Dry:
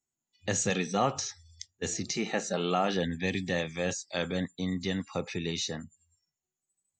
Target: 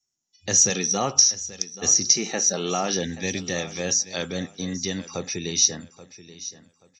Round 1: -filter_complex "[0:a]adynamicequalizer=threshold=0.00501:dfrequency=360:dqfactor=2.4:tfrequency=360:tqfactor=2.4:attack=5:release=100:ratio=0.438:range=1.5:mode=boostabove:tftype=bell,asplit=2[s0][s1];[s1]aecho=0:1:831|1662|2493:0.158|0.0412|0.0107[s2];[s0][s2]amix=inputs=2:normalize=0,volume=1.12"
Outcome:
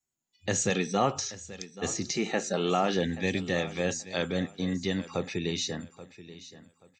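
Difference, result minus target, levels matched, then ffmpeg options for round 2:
8 kHz band -8.0 dB
-filter_complex "[0:a]adynamicequalizer=threshold=0.00501:dfrequency=360:dqfactor=2.4:tfrequency=360:tqfactor=2.4:attack=5:release=100:ratio=0.438:range=1.5:mode=boostabove:tftype=bell,lowpass=f=5700:t=q:w=14,asplit=2[s0][s1];[s1]aecho=0:1:831|1662|2493:0.158|0.0412|0.0107[s2];[s0][s2]amix=inputs=2:normalize=0,volume=1.12"

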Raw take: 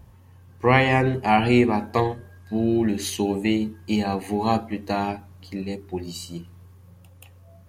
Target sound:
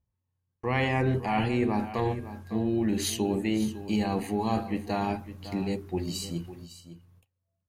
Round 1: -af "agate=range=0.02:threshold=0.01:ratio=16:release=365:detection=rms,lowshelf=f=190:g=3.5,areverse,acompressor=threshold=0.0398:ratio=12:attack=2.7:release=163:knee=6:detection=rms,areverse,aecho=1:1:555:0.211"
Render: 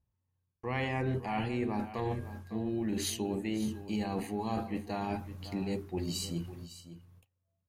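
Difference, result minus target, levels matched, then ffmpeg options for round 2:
compression: peak gain reduction +7 dB
-af "agate=range=0.02:threshold=0.01:ratio=16:release=365:detection=rms,lowshelf=f=190:g=3.5,areverse,acompressor=threshold=0.0944:ratio=12:attack=2.7:release=163:knee=6:detection=rms,areverse,aecho=1:1:555:0.211"

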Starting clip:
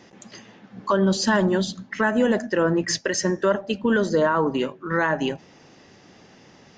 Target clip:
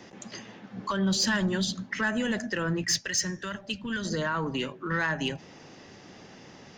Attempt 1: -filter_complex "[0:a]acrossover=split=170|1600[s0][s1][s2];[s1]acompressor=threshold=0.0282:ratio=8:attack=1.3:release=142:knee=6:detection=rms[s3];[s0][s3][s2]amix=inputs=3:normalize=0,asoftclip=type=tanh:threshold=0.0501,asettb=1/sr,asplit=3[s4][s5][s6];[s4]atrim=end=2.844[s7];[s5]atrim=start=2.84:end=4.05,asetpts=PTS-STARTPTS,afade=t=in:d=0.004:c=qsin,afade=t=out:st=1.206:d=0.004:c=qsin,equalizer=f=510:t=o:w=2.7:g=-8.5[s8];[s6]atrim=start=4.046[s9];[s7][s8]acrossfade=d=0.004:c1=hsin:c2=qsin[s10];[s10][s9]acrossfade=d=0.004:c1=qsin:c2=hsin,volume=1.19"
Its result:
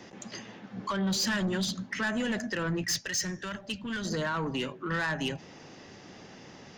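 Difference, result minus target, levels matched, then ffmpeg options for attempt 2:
saturation: distortion +10 dB
-filter_complex "[0:a]acrossover=split=170|1600[s0][s1][s2];[s1]acompressor=threshold=0.0282:ratio=8:attack=1.3:release=142:knee=6:detection=rms[s3];[s0][s3][s2]amix=inputs=3:normalize=0,asoftclip=type=tanh:threshold=0.126,asettb=1/sr,asplit=3[s4][s5][s6];[s4]atrim=end=2.844[s7];[s5]atrim=start=2.84:end=4.05,asetpts=PTS-STARTPTS,afade=t=in:d=0.004:c=qsin,afade=t=out:st=1.206:d=0.004:c=qsin,equalizer=f=510:t=o:w=2.7:g=-8.5[s8];[s6]atrim=start=4.046[s9];[s7][s8]acrossfade=d=0.004:c1=hsin:c2=qsin[s10];[s10][s9]acrossfade=d=0.004:c1=qsin:c2=hsin,volume=1.19"

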